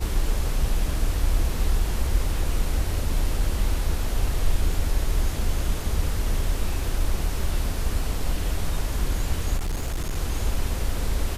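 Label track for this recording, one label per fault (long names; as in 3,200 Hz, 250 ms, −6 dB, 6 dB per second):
9.570000	10.170000	clipping −22.5 dBFS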